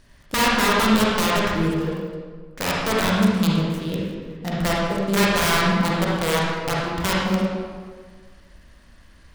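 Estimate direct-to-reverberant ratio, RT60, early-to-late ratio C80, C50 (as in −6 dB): −5.0 dB, 1.6 s, 0.5 dB, −3.0 dB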